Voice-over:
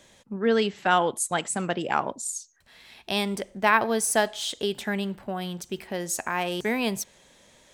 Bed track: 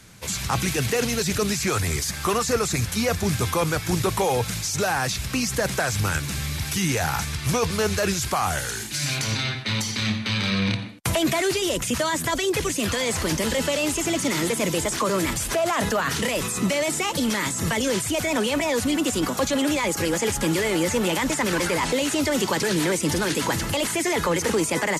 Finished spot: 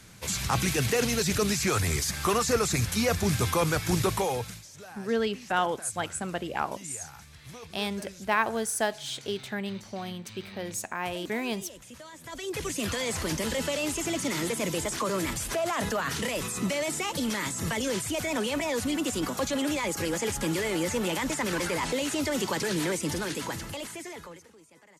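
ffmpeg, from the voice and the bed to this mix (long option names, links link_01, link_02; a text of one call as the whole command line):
ffmpeg -i stem1.wav -i stem2.wav -filter_complex "[0:a]adelay=4650,volume=-5dB[link_01];[1:a]volume=14dB,afade=type=out:start_time=4.03:duration=0.63:silence=0.1,afade=type=in:start_time=12.21:duration=0.57:silence=0.149624,afade=type=out:start_time=22.88:duration=1.6:silence=0.0421697[link_02];[link_01][link_02]amix=inputs=2:normalize=0" out.wav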